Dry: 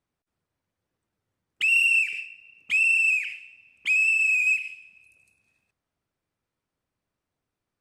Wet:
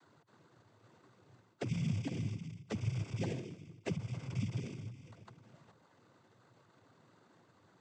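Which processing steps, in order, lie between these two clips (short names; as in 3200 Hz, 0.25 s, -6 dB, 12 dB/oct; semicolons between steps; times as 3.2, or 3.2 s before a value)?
spectral gate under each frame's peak -25 dB strong; reverse; compressor 6:1, threshold -35 dBFS, peak gain reduction 16 dB; reverse; limiter -34 dBFS, peak gain reduction 7 dB; sample-rate reducer 2600 Hz, jitter 0%; noise vocoder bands 16; three-band squash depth 40%; gain +8.5 dB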